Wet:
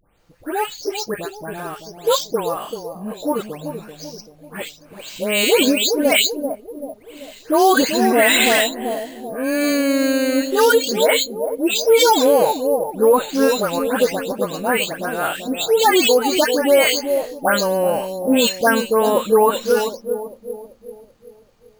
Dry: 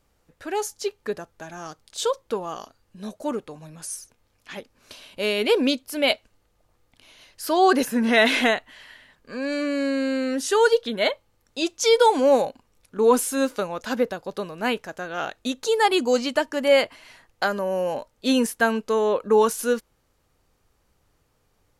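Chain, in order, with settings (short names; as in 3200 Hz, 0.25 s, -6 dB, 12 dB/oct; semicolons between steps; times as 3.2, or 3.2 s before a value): spectral delay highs late, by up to 0.297 s; high shelf 4600 Hz +10.5 dB; analogue delay 0.386 s, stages 2048, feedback 46%, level -8 dB; careless resampling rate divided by 4×, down filtered, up hold; maximiser +11.5 dB; gain -4.5 dB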